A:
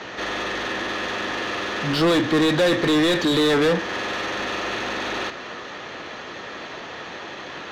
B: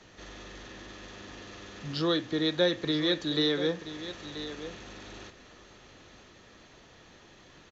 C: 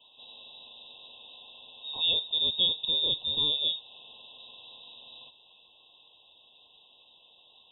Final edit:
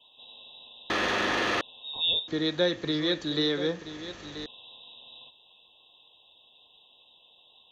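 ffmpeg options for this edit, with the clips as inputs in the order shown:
-filter_complex "[2:a]asplit=3[s0][s1][s2];[s0]atrim=end=0.902[s3];[0:a]atrim=start=0.898:end=1.612[s4];[s1]atrim=start=1.608:end=2.282[s5];[1:a]atrim=start=2.278:end=4.462[s6];[s2]atrim=start=4.458[s7];[s3][s4]acrossfade=d=0.004:c1=hsin:c2=hsin[s8];[s8][s5]acrossfade=d=0.004:c1=hsin:c2=hsin[s9];[s9][s6]acrossfade=d=0.004:c1=hsin:c2=hsin[s10];[s10][s7]acrossfade=d=0.004:c1=hsin:c2=hsin"

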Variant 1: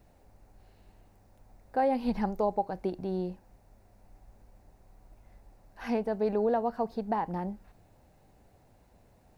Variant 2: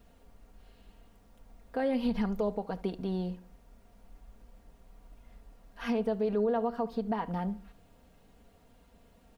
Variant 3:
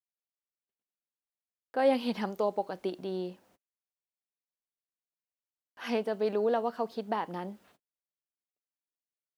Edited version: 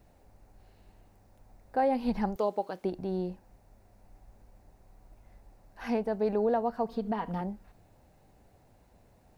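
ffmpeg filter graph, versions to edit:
-filter_complex "[0:a]asplit=3[s0][s1][s2];[s0]atrim=end=2.362[s3];[2:a]atrim=start=2.358:end=2.842[s4];[s1]atrim=start=2.838:end=6.892[s5];[1:a]atrim=start=6.888:end=7.412[s6];[s2]atrim=start=7.408[s7];[s3][s4]acrossfade=d=0.004:c1=hsin:c2=hsin[s8];[s8][s5]acrossfade=d=0.004:c1=hsin:c2=hsin[s9];[s9][s6]acrossfade=d=0.004:c1=hsin:c2=hsin[s10];[s10][s7]acrossfade=d=0.004:c1=hsin:c2=hsin"

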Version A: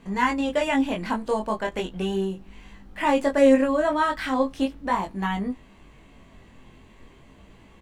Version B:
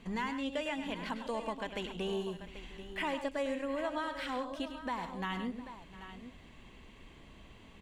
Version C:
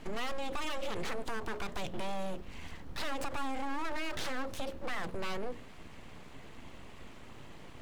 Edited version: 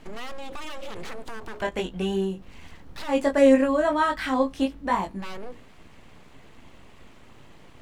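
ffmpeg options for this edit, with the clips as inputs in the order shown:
-filter_complex "[0:a]asplit=2[s0][s1];[2:a]asplit=3[s2][s3][s4];[s2]atrim=end=1.622[s5];[s0]atrim=start=1.618:end=2.422[s6];[s3]atrim=start=2.418:end=3.16[s7];[s1]atrim=start=3.06:end=5.26[s8];[s4]atrim=start=5.16[s9];[s5][s6]acrossfade=d=0.004:c1=hsin:c2=hsin[s10];[s10][s7]acrossfade=d=0.004:c1=hsin:c2=hsin[s11];[s11][s8]acrossfade=d=0.1:c1=tri:c2=tri[s12];[s12][s9]acrossfade=d=0.1:c1=tri:c2=tri"

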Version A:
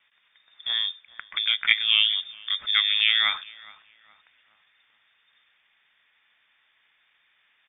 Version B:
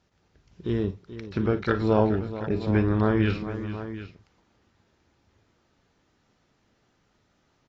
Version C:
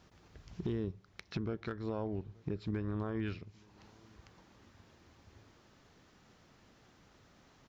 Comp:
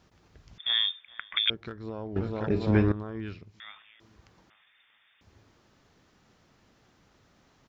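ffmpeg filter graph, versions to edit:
-filter_complex "[0:a]asplit=3[s0][s1][s2];[2:a]asplit=5[s3][s4][s5][s6][s7];[s3]atrim=end=0.582[s8];[s0]atrim=start=0.578:end=1.502[s9];[s4]atrim=start=1.498:end=2.162[s10];[1:a]atrim=start=2.158:end=2.922[s11];[s5]atrim=start=2.918:end=3.602[s12];[s1]atrim=start=3.598:end=4.002[s13];[s6]atrim=start=3.998:end=4.502[s14];[s2]atrim=start=4.498:end=5.212[s15];[s7]atrim=start=5.208[s16];[s8][s9]acrossfade=d=0.004:c1=hsin:c2=hsin[s17];[s17][s10]acrossfade=d=0.004:c1=hsin:c2=hsin[s18];[s18][s11]acrossfade=d=0.004:c1=hsin:c2=hsin[s19];[s19][s12]acrossfade=d=0.004:c1=hsin:c2=hsin[s20];[s20][s13]acrossfade=d=0.004:c1=hsin:c2=hsin[s21];[s21][s14]acrossfade=d=0.004:c1=hsin:c2=hsin[s22];[s22][s15]acrossfade=d=0.004:c1=hsin:c2=hsin[s23];[s23][s16]acrossfade=d=0.004:c1=hsin:c2=hsin"

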